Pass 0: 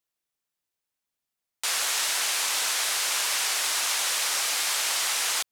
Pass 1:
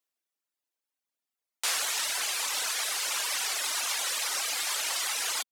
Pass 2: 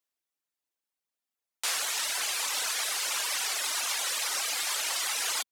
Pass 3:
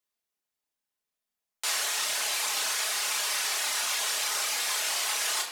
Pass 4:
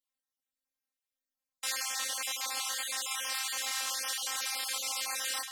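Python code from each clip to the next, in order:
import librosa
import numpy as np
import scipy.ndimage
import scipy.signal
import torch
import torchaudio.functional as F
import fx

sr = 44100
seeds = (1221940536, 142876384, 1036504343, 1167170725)

y1 = scipy.signal.sosfilt(scipy.signal.cheby1(4, 1.0, 230.0, 'highpass', fs=sr, output='sos'), x)
y1 = fx.dereverb_blind(y1, sr, rt60_s=1.6)
y2 = fx.rider(y1, sr, range_db=10, speed_s=0.5)
y3 = fx.doubler(y2, sr, ms=30.0, db=-5)
y3 = fx.room_shoebox(y3, sr, seeds[0], volume_m3=2300.0, walls='mixed', distance_m=1.4)
y3 = y3 * librosa.db_to_amplitude(-1.0)
y4 = fx.spec_dropout(y3, sr, seeds[1], share_pct=28)
y4 = fx.robotise(y4, sr, hz=264.0)
y4 = y4 * librosa.db_to_amplitude(-2.0)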